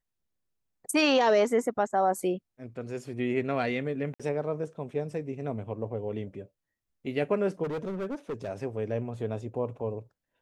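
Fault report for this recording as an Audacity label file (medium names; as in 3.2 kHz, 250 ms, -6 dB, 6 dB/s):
4.140000	4.200000	dropout 56 ms
7.630000	8.490000	clipped -29.5 dBFS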